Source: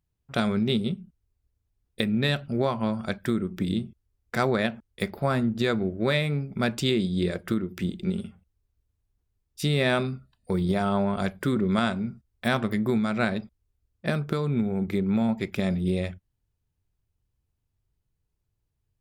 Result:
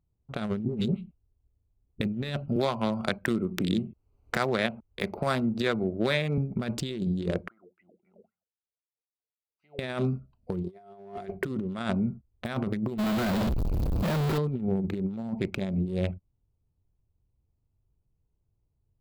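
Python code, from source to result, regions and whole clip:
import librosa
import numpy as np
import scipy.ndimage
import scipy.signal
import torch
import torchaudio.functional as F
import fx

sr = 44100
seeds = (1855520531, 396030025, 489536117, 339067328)

y = fx.chain(x, sr, fx.median_filter(points=3),
    fx.high_shelf(hz=3300.0, db=-9.0),
    fx.dispersion(late='highs', ms=130.0, hz=1200.0), at=(0.65, 2.01))
y = fx.chain(y, sr, fx.low_shelf(hz=480.0, db=-8.5),
    fx.band_squash(depth_pct=100), at=(2.56, 6.38))
y = fx.chain(y, sr, fx.tube_stage(drive_db=17.0, bias=0.35),
    fx.wah_lfo(hz=3.8, low_hz=460.0, high_hz=2000.0, q=19.0), at=(7.48, 9.79))
y = fx.chain(y, sr, fx.peak_eq(hz=2000.0, db=7.5, octaves=0.4),
    fx.small_body(hz=(390.0, 700.0), ring_ms=95, db=17), at=(10.64, 11.45))
y = fx.chain(y, sr, fx.clip_1bit(),
    fx.peak_eq(hz=8600.0, db=-7.5, octaves=0.94), at=(12.98, 14.38))
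y = fx.wiener(y, sr, points=25)
y = fx.over_compress(y, sr, threshold_db=-28.0, ratio=-0.5)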